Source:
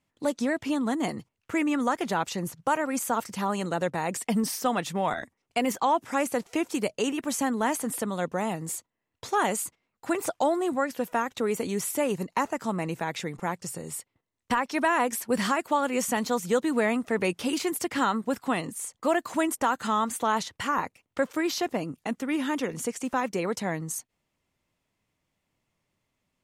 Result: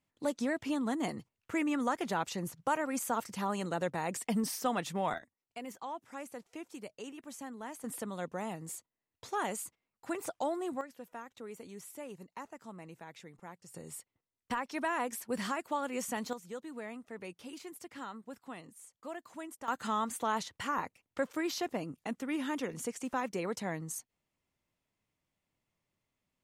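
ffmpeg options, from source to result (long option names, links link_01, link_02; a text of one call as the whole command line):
ffmpeg -i in.wav -af "asetnsamples=nb_out_samples=441:pad=0,asendcmd='5.18 volume volume -17.5dB;7.84 volume volume -9.5dB;10.81 volume volume -18.5dB;13.74 volume volume -9.5dB;16.33 volume volume -18.5dB;19.68 volume volume -7dB',volume=-6dB" out.wav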